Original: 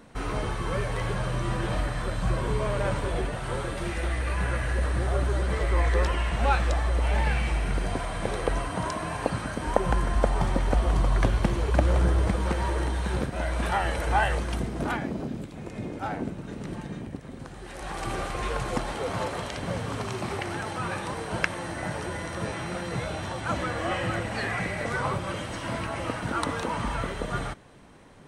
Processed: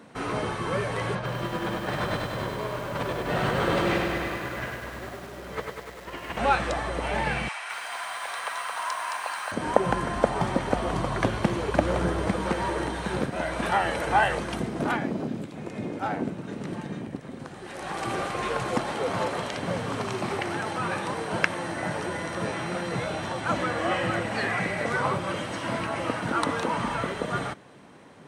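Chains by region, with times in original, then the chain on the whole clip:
1.15–6.39 LPF 5500 Hz + negative-ratio compressor -31 dBFS, ratio -0.5 + lo-fi delay 99 ms, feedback 80%, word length 8-bit, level -3.5 dB
7.48–9.52 HPF 880 Hz 24 dB/oct + lo-fi delay 0.218 s, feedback 55%, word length 8-bit, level -3 dB
whole clip: HPF 140 Hz 12 dB/oct; high shelf 5600 Hz -4.5 dB; gain +3 dB

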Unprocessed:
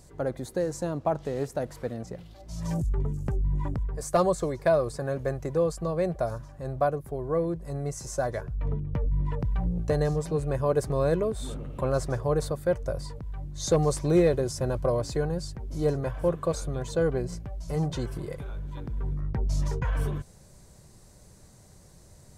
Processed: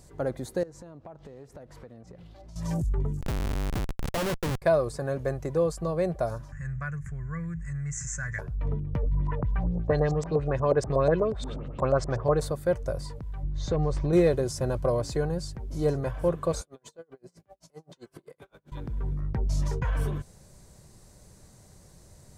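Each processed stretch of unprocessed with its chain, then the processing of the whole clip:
0.63–2.56 LPF 3600 Hz 6 dB/oct + compressor, threshold -43 dBFS
3.21–4.62 HPF 51 Hz + Schmitt trigger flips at -28 dBFS
6.52–8.39 EQ curve 160 Hz 0 dB, 290 Hz -23 dB, 740 Hz -26 dB, 1800 Hz +10 dB, 4100 Hz -22 dB, 7100 Hz +6 dB, 12000 Hz -27 dB + fast leveller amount 50%
9.03–12.41 high shelf 10000 Hz -6.5 dB + LFO low-pass saw up 8.3 Hz 550–7700 Hz
13.43–14.13 LPF 3200 Hz + compressor 2.5:1, threshold -26 dBFS + low shelf 86 Hz +11.5 dB
16.61–18.72 HPF 250 Hz + compressor 8:1, threshold -38 dBFS + dB-linear tremolo 7.7 Hz, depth 35 dB
whole clip: dry

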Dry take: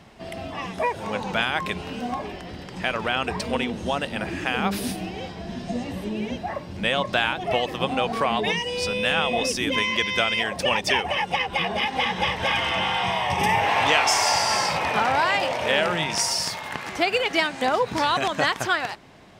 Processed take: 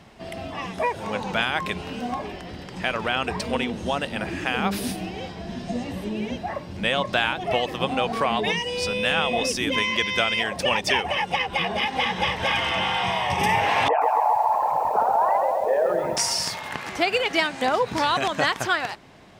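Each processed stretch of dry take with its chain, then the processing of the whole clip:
13.88–16.17 formant sharpening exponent 3 + LPF 1400 Hz 24 dB/oct + lo-fi delay 0.133 s, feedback 55%, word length 8-bit, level -4.5 dB
whole clip: dry

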